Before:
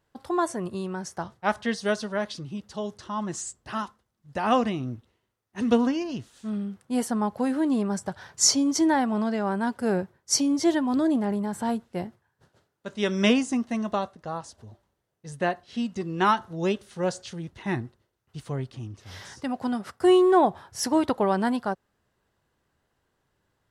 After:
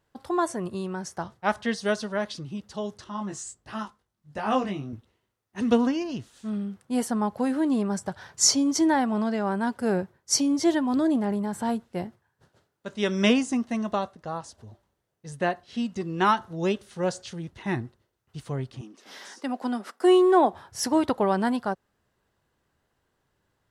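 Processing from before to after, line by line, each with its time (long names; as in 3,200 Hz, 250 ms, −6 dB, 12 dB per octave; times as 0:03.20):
0:03.04–0:04.93: chorus effect 1.4 Hz, delay 18.5 ms, depth 2.5 ms
0:18.81–0:20.53: Butterworth high-pass 220 Hz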